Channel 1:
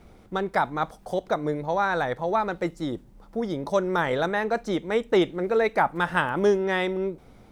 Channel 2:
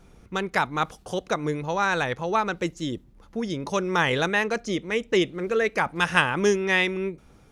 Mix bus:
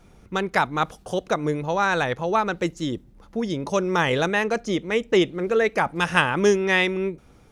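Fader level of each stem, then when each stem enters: -9.5 dB, +0.5 dB; 0.00 s, 0.00 s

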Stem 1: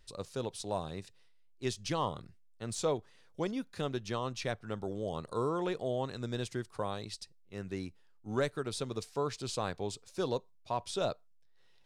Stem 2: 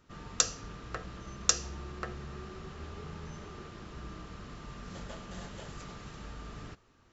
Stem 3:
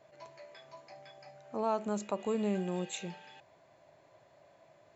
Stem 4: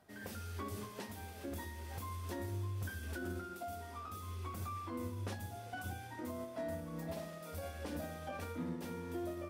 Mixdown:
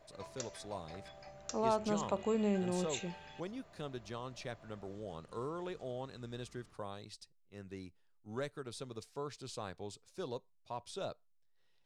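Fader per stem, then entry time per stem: -8.5 dB, -19.5 dB, -0.5 dB, mute; 0.00 s, 0.00 s, 0.00 s, mute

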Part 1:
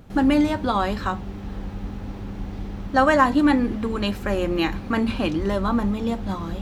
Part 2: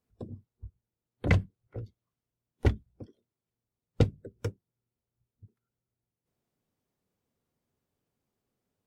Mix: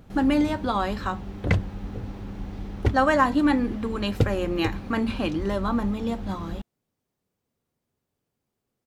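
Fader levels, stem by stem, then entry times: -3.0 dB, +2.0 dB; 0.00 s, 0.20 s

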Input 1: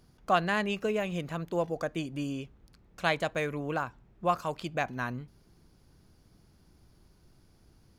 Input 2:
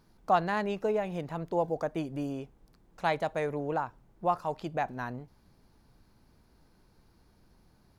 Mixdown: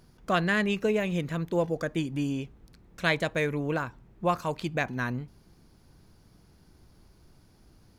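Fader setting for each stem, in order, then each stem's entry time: +2.5 dB, -3.0 dB; 0.00 s, 0.00 s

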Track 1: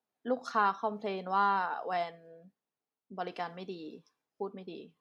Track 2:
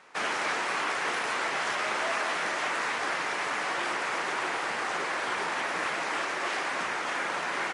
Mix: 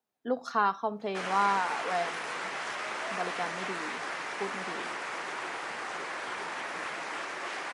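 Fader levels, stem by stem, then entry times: +1.5 dB, -6.0 dB; 0.00 s, 1.00 s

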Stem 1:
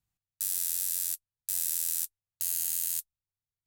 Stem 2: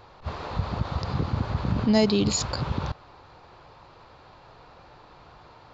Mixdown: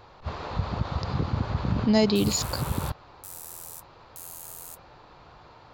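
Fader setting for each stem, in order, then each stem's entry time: -11.5 dB, -0.5 dB; 1.75 s, 0.00 s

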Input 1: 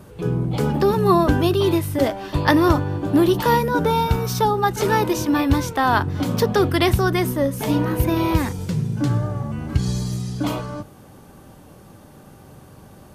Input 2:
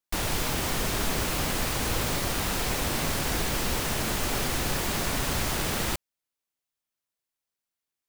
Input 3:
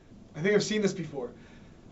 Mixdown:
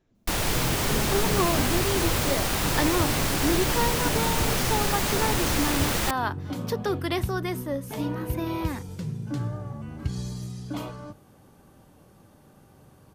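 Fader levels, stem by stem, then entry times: -9.5 dB, +2.5 dB, -15.0 dB; 0.30 s, 0.15 s, 0.00 s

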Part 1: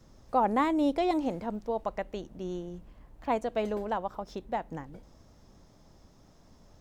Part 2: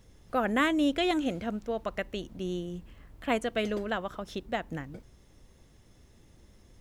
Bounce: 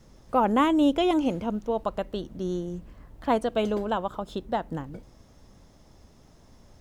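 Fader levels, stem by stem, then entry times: +2.0 dB, -2.5 dB; 0.00 s, 0.00 s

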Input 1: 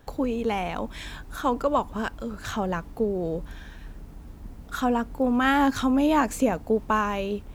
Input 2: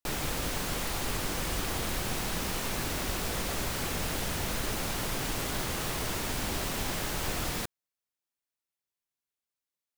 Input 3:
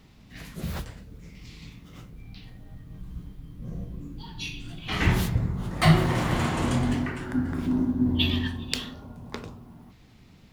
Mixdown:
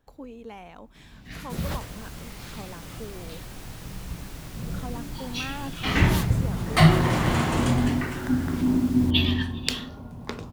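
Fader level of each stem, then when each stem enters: -15.0 dB, -11.0 dB, +2.5 dB; 0.00 s, 1.45 s, 0.95 s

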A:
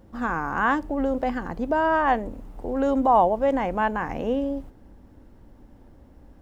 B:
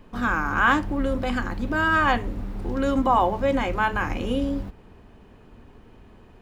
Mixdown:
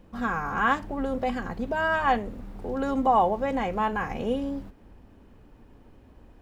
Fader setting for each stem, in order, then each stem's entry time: -4.0 dB, -8.0 dB; 0.00 s, 0.00 s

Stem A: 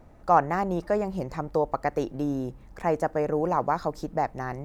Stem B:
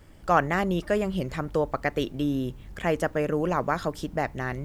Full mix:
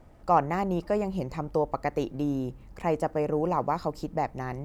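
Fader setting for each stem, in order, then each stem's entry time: -2.0 dB, -13.5 dB; 0.00 s, 0.00 s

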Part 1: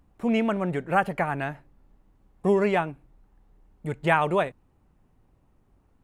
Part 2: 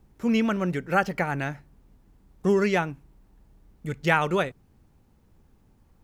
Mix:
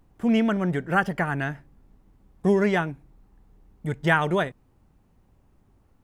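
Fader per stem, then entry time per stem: +0.5 dB, -6.5 dB; 0.00 s, 0.00 s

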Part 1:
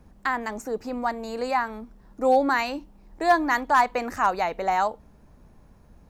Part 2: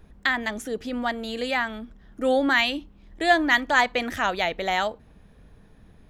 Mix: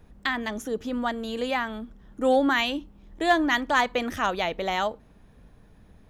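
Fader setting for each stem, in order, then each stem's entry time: -6.5 dB, -2.5 dB; 0.00 s, 0.00 s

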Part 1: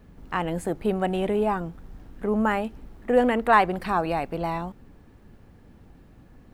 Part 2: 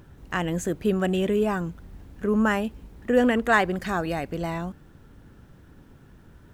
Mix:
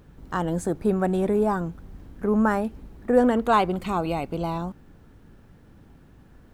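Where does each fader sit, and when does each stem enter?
-2.5 dB, -5.0 dB; 0.00 s, 0.00 s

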